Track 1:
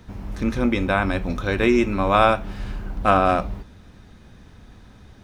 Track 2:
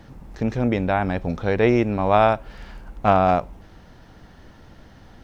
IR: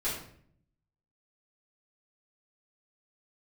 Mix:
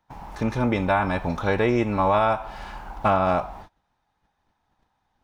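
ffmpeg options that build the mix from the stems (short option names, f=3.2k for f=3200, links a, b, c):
-filter_complex "[0:a]highpass=f=840:t=q:w=5.8,volume=-3dB,asplit=2[a][b];[b]volume=-19.5dB[c];[1:a]agate=range=-9dB:threshold=-44dB:ratio=16:detection=peak,volume=-1.5dB,asplit=2[d][e];[e]apad=whole_len=230870[f];[a][f]sidechaincompress=threshold=-22dB:ratio=8:attack=22:release=456[g];[2:a]atrim=start_sample=2205[h];[c][h]afir=irnorm=-1:irlink=0[i];[g][d][i]amix=inputs=3:normalize=0,agate=range=-22dB:threshold=-42dB:ratio=16:detection=peak,alimiter=limit=-10.5dB:level=0:latency=1:release=313"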